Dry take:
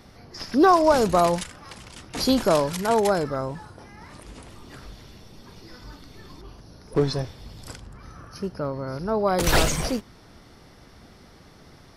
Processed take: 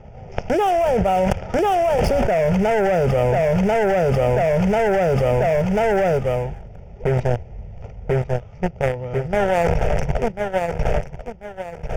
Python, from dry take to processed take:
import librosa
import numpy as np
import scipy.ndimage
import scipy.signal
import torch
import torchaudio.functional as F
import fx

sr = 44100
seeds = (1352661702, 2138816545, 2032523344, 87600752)

y = scipy.ndimage.median_filter(x, 25, mode='constant')
y = fx.doppler_pass(y, sr, speed_mps=26, closest_m=6.1, pass_at_s=2.69)
y = scipy.signal.sosfilt(scipy.signal.butter(8, 6100.0, 'lowpass', fs=sr, output='sos'), y)
y = fx.peak_eq(y, sr, hz=1600.0, db=-11.5, octaves=0.24)
y = fx.leveller(y, sr, passes=3)
y = fx.fixed_phaser(y, sr, hz=1100.0, stages=6)
y = fx.echo_feedback(y, sr, ms=1041, feedback_pct=31, wet_db=-13.0)
y = fx.env_flatten(y, sr, amount_pct=100)